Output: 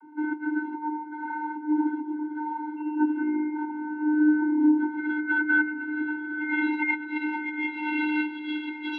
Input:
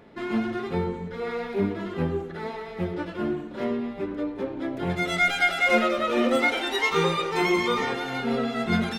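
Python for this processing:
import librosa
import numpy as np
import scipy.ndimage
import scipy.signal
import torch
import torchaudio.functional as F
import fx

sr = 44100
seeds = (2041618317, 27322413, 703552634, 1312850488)

p1 = fx.over_compress(x, sr, threshold_db=-28.0, ratio=-0.5)
p2 = fx.spec_paint(p1, sr, seeds[0], shape='fall', start_s=2.76, length_s=1.94, low_hz=1200.0, high_hz=2900.0, level_db=-37.0)
p3 = fx.vocoder(p2, sr, bands=32, carrier='square', carrier_hz=303.0)
p4 = fx.filter_sweep_lowpass(p3, sr, from_hz=1200.0, to_hz=3000.0, start_s=4.71, end_s=8.33, q=6.2)
y = p4 + fx.echo_diffused(p4, sr, ms=1048, feedback_pct=56, wet_db=-12, dry=0)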